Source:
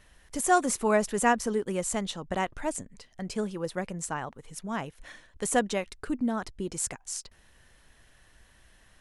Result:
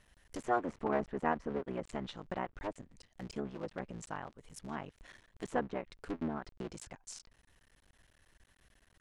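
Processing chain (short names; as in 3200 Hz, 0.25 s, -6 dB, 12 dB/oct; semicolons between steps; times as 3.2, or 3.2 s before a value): cycle switcher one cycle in 3, muted; treble ducked by the level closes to 1700 Hz, closed at -26.5 dBFS; gain -7 dB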